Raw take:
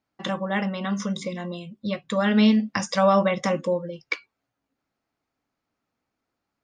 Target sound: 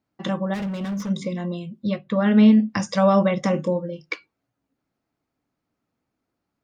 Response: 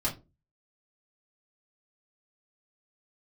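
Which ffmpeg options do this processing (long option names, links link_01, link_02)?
-filter_complex "[0:a]asettb=1/sr,asplit=3[link_01][link_02][link_03];[link_01]atrim=end=1.984[link_04];[link_02]atrim=start=1.98:end=2.7,asetpts=PTS-STARTPTS,afade=type=in:duration=0.004:curve=qsin,afade=type=out:start_time=0.716:duration=0.004:curve=qsin,lowpass=3000[link_05];[link_03]atrim=start=2.696[link_06];[link_04][link_05]acrossfade=duration=0.004:curve1=hsin:curve2=qsin[link_07];[link_07][link_06]acrossfade=duration=0.004:curve1=qsin:curve2=hsin,asettb=1/sr,asplit=3[link_08][link_09][link_10];[link_08]atrim=end=3.514[link_11];[link_09]atrim=start=3.51:end=4.06,asetpts=PTS-STARTPTS,afade=type=in:duration=0.004:curve=qsin,afade=type=out:start_time=0.546:duration=0.004:curve=qsin,asplit=2[link_12][link_13];[link_13]adelay=27,volume=-9dB[link_14];[link_12][link_14]amix=inputs=2:normalize=0,atrim=end_sample=24255[link_15];[link_10]atrim=start=4.056[link_16];[link_11][link_15]acrossfade=duration=0.004:curve1=hsin:curve2=qsin[link_17];[link_17][link_16]acrossfade=duration=0.004:curve1=qsin:curve2=hsin,asplit=2[link_18][link_19];[1:a]atrim=start_sample=2205[link_20];[link_19][link_20]afir=irnorm=-1:irlink=0,volume=-28.5dB[link_21];[link_18][link_21]amix=inputs=2:normalize=0,asplit=3[link_22][link_23][link_24];[link_22]afade=type=out:start_time=0.53:duration=0.02[link_25];[link_23]asoftclip=type=hard:threshold=-29.5dB,afade=type=in:start_time=0.53:duration=0.02,afade=type=out:start_time=1.09:duration=0.02[link_26];[link_24]afade=type=in:start_time=1.09:duration=0.02[link_27];[link_25][link_26][link_27]amix=inputs=3:normalize=0,equalizer=frequency=140:width=0.31:gain=8,volume=-2.5dB"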